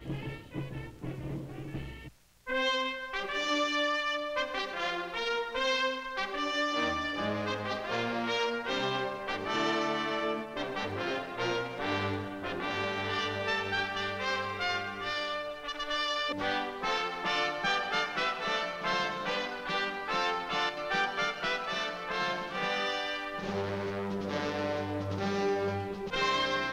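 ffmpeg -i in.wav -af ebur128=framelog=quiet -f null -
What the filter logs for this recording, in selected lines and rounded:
Integrated loudness:
  I:         -32.1 LUFS
  Threshold: -42.2 LUFS
Loudness range:
  LRA:         2.3 LU
  Threshold: -52.0 LUFS
  LRA low:   -33.3 LUFS
  LRA high:  -31.0 LUFS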